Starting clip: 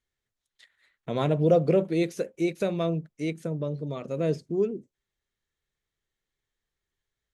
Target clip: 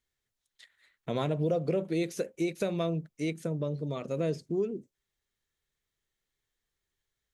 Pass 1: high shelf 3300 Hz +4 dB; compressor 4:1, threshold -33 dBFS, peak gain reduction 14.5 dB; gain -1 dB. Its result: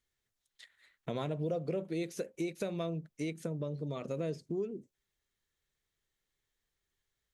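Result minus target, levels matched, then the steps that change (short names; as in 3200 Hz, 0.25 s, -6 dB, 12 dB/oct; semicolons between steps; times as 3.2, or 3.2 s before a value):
compressor: peak gain reduction +6 dB
change: compressor 4:1, threshold -25 dBFS, peak gain reduction 8.5 dB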